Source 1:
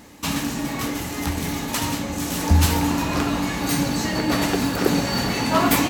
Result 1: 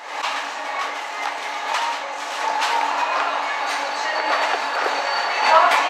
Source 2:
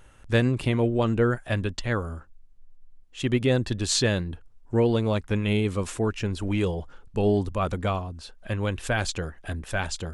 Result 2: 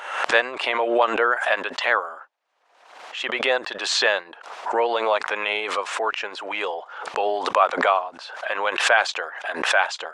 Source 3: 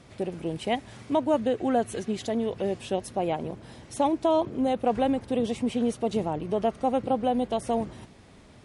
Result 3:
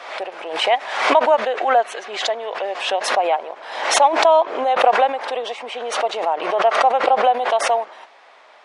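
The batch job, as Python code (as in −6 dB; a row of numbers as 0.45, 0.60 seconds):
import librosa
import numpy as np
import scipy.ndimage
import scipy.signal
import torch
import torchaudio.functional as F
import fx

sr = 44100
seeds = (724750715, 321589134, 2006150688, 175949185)

y = scipy.signal.sosfilt(scipy.signal.butter(4, 690.0, 'highpass', fs=sr, output='sos'), x)
y = fx.spacing_loss(y, sr, db_at_10k=26)
y = fx.pre_swell(y, sr, db_per_s=65.0)
y = y * 10.0 ** (-2 / 20.0) / np.max(np.abs(y))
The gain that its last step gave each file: +10.5, +14.5, +15.5 decibels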